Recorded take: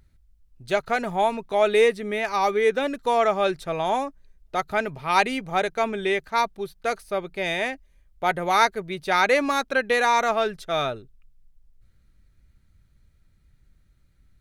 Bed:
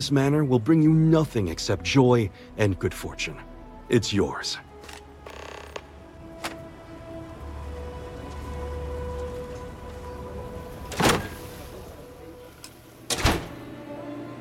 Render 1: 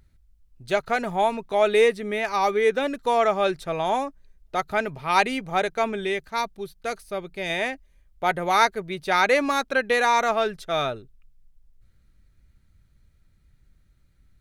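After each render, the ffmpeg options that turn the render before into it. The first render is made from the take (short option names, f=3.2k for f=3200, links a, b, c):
-filter_complex "[0:a]asettb=1/sr,asplit=3[a][b][c];[a]atrim=end=6.054[d];[b]atrim=start=6.05:end=7.5,asetpts=PTS-STARTPTS,afade=t=in:d=0.004:c=qsin,afade=t=out:st=1.446:d=0.004:c=qsin,equalizer=f=970:w=0.38:g=-4.5[e];[c]atrim=start=7.496[f];[d][e]acrossfade=d=0.004:c1=hsin:c2=qsin[g];[g][f]acrossfade=d=0.004:c1=qsin:c2=hsin"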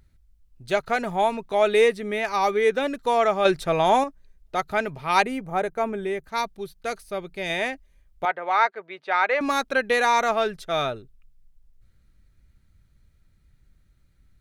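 -filter_complex "[0:a]asettb=1/sr,asplit=3[a][b][c];[a]atrim=end=3.454[d];[b]atrim=start=3.45:end=4.04,asetpts=PTS-STARTPTS,afade=t=in:d=0.004:c=qsin,afade=t=out:st=0.586:d=0.004:c=qsin,acontrast=31[e];[c]atrim=start=4.036[f];[d][e]acrossfade=d=0.004:c1=hsin:c2=qsin[g];[g][f]acrossfade=d=0.004:c1=qsin:c2=hsin,asettb=1/sr,asplit=3[h][i][j];[h]atrim=end=5.224[k];[i]atrim=start=5.22:end=6.28,asetpts=PTS-STARTPTS,afade=t=in:d=0.004:c=qsin,afade=t=out:st=1.056:d=0.004:c=qsin,equalizer=f=4k:w=0.67:g=-12.5[l];[j]atrim=start=6.276[m];[k][l]acrossfade=d=0.004:c1=hsin:c2=qsin[n];[n][m]acrossfade=d=0.004:c1=qsin:c2=hsin,asettb=1/sr,asplit=3[o][p][q];[o]atrim=end=8.254[r];[p]atrim=start=8.25:end=9.41,asetpts=PTS-STARTPTS,afade=t=in:d=0.004:c=qsin,afade=t=out:st=1.156:d=0.004:c=qsin,highpass=590,lowpass=2.3k[s];[q]atrim=start=9.406[t];[r][s]acrossfade=d=0.004:c1=hsin:c2=qsin[u];[u][t]acrossfade=d=0.004:c1=qsin:c2=hsin"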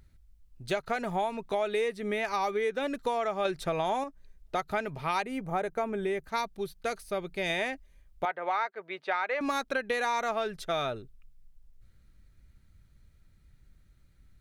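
-af "acompressor=threshold=-27dB:ratio=6"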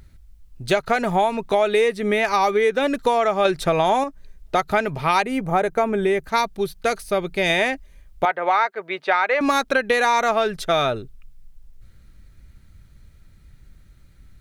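-af "volume=11dB"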